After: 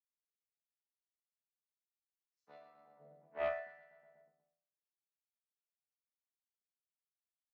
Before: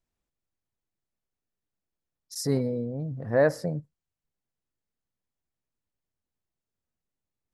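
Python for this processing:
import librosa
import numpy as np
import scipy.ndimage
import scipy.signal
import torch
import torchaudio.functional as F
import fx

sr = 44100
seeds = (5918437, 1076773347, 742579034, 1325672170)

p1 = fx.chord_vocoder(x, sr, chord='bare fifth', root=50)
p2 = fx.power_curve(p1, sr, exponent=2.0)
p3 = fx.tilt_eq(p2, sr, slope=-3.0)
p4 = p3 + fx.echo_feedback(p3, sr, ms=122, feedback_pct=53, wet_db=-9.5, dry=0)
p5 = fx.filter_lfo_highpass(p4, sr, shape='sine', hz=0.87, low_hz=490.0, high_hz=1800.0, q=0.71)
p6 = scipy.signal.sosfilt(scipy.signal.butter(2, 150.0, 'highpass', fs=sr, output='sos'), p5)
p7 = fx.resonator_bank(p6, sr, root=52, chord='minor', decay_s=0.56)
p8 = fx.doppler_dist(p7, sr, depth_ms=0.18)
y = p8 * librosa.db_to_amplitude(13.0)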